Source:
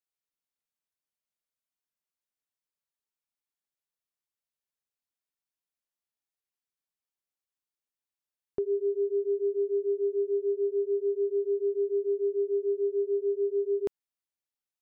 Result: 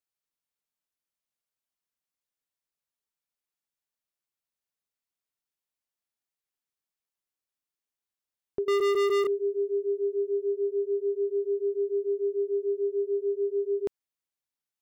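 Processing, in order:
0:08.68–0:09.27: leveller curve on the samples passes 5

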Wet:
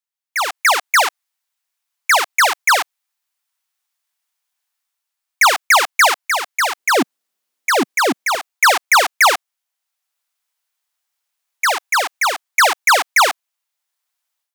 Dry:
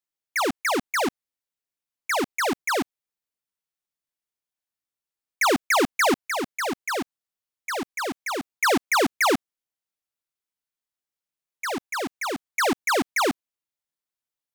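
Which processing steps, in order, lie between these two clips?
high-pass filter 740 Hz 24 dB per octave, from 0:06.77 190 Hz, from 0:08.35 670 Hz
automatic gain control gain up to 14 dB

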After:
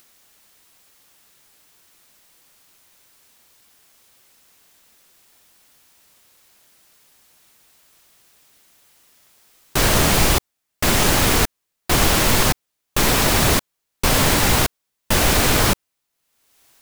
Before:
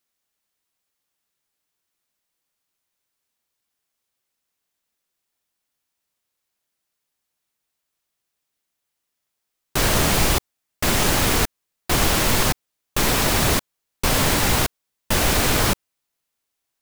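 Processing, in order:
upward compression, threshold −40 dBFS
level +2.5 dB

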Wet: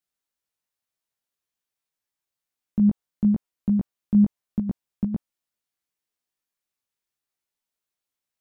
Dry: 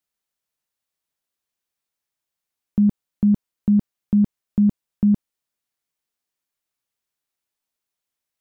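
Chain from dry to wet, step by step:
chorus effect 0.82 Hz, delay 16 ms, depth 3.2 ms
dynamic equaliser 770 Hz, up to +4 dB, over −42 dBFS, Q 1

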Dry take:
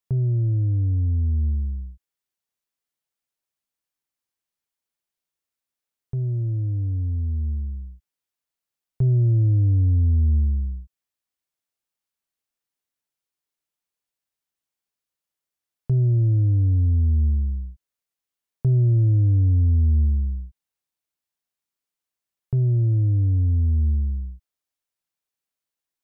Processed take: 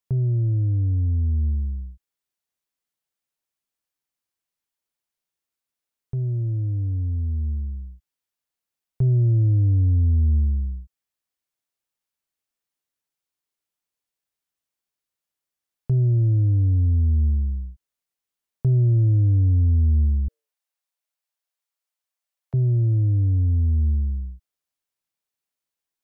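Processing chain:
0:20.28–0:22.54: Butterworth high-pass 480 Hz 72 dB per octave

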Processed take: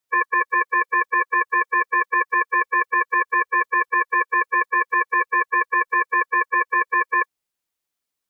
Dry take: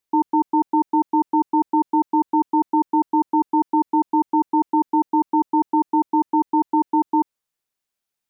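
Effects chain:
phase-vocoder pitch shift with formants kept +2.5 semitones
ring modulation 1,400 Hz
level +4.5 dB

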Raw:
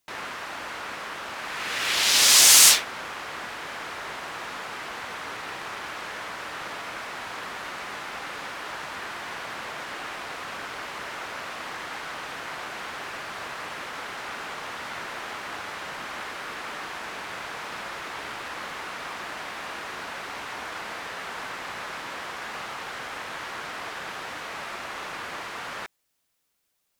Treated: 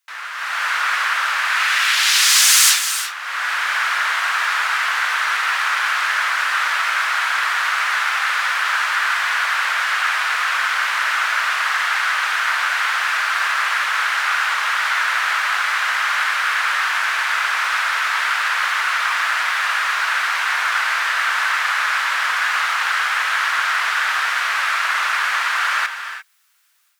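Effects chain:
automatic gain control gain up to 13 dB
hard clipping −8 dBFS, distortion −24 dB
high-pass with resonance 1,400 Hz, resonance Q 1.9
reverb whose tail is shaped and stops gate 370 ms rising, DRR 8.5 dB

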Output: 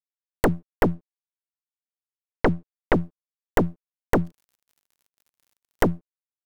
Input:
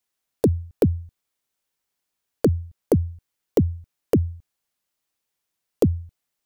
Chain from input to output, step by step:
0:00.95–0:02.94: Butterworth low-pass 2,600 Hz
harmonic generator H 2 −7 dB, 3 −12 dB, 6 −8 dB, 7 −40 dB, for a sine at −7 dBFS
0:04.23–0:05.87: surface crackle 150 per second −39 dBFS
dead-zone distortion −40 dBFS
level −2.5 dB

